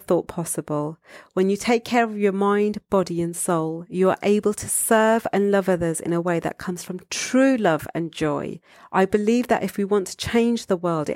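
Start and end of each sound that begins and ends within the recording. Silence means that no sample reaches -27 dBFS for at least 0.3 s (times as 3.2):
1.37–8.53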